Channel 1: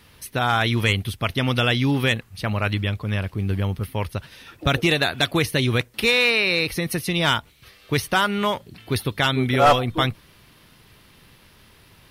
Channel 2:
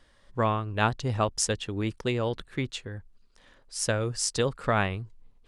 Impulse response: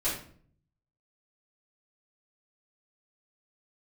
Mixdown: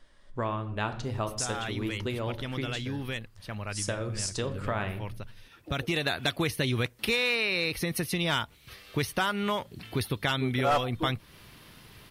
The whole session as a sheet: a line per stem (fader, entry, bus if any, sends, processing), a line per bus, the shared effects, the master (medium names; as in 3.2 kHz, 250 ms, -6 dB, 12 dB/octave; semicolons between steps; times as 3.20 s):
+0.5 dB, 1.05 s, no send, auto duck -13 dB, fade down 1.70 s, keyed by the second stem
-2.5 dB, 0.00 s, send -13.5 dB, none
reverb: on, RT60 0.50 s, pre-delay 3 ms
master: compression 2:1, threshold -31 dBFS, peak gain reduction 11 dB